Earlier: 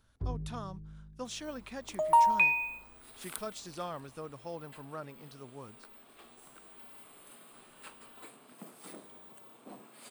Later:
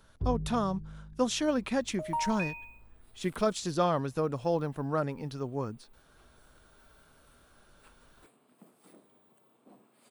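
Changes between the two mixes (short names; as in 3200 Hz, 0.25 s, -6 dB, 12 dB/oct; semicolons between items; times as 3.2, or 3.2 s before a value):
speech +11.5 dB; second sound -10.0 dB; master: add tilt shelf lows +3.5 dB, about 860 Hz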